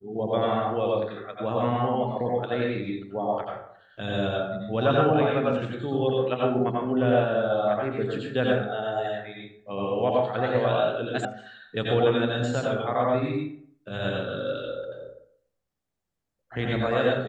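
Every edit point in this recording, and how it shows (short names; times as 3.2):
11.25 sound cut off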